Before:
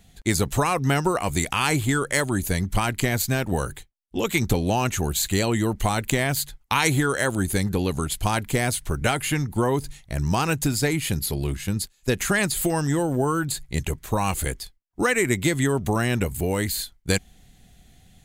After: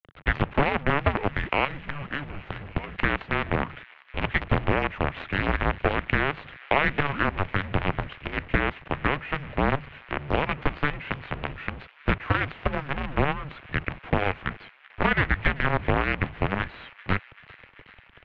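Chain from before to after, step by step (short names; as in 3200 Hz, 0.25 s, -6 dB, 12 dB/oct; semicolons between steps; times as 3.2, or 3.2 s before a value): 1.65–2.97 bell 1000 Hz -12.5 dB 2.3 oct; 8–8.56 spectral gain 670–1800 Hz -25 dB; in parallel at 0 dB: compressor 10:1, threshold -29 dBFS, peak gain reduction 14 dB; on the sum: companded quantiser 2-bit; mistuned SSB -290 Hz 170–3000 Hz; on a send: thin delay 0.387 s, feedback 74%, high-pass 1800 Hz, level -18 dB; on the sum: gain -7 dB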